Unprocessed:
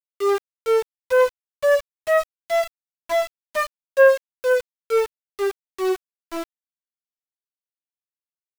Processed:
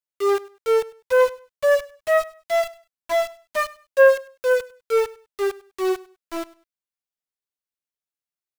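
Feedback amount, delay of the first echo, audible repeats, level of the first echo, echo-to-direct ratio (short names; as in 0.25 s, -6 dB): 24%, 0.1 s, 2, -21.0 dB, -21.0 dB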